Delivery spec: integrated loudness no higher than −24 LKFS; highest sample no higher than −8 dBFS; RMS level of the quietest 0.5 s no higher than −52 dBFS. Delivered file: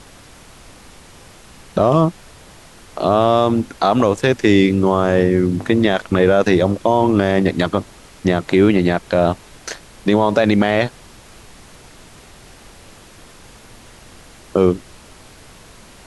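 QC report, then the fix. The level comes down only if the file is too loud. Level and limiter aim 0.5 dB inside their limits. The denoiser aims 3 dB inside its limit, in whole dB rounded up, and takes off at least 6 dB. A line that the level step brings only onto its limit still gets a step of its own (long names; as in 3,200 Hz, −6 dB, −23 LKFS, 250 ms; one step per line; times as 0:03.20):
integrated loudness −16.5 LKFS: out of spec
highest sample −2.5 dBFS: out of spec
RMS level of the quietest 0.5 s −43 dBFS: out of spec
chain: broadband denoise 6 dB, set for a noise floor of −43 dBFS
level −8 dB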